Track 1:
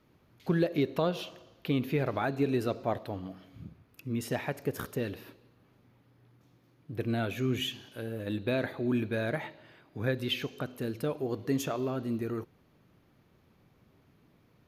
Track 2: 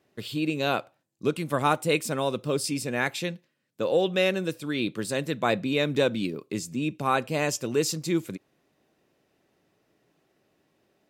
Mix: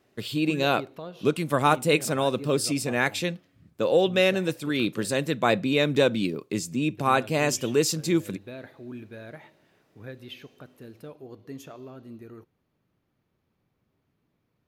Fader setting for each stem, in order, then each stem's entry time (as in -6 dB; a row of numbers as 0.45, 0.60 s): -10.5, +2.5 dB; 0.00, 0.00 s